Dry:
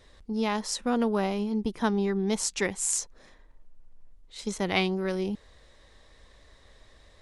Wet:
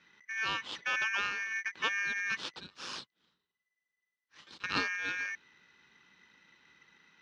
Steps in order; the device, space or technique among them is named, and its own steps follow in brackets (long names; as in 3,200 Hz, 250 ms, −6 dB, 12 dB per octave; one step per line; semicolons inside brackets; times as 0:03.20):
0:02.57–0:04.64: first-order pre-emphasis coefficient 0.97
ring modulator pedal into a guitar cabinet (ring modulator with a square carrier 2,000 Hz; loudspeaker in its box 100–4,000 Hz, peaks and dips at 110 Hz −9 dB, 680 Hz −8 dB, 2,100 Hz −9 dB)
level −2.5 dB